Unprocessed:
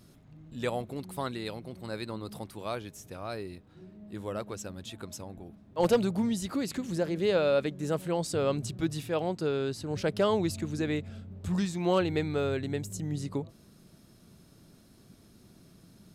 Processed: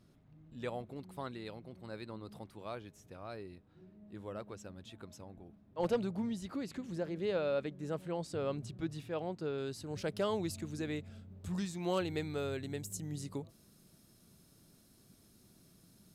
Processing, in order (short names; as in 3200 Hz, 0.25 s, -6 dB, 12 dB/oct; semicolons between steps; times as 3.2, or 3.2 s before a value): high shelf 5700 Hz -10 dB, from 9.58 s +4.5 dB, from 11.82 s +10 dB; gain -8 dB